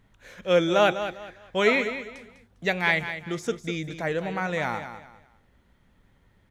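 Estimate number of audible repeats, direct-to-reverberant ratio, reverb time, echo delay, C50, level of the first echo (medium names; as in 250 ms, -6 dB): 3, no reverb, no reverb, 201 ms, no reverb, -10.5 dB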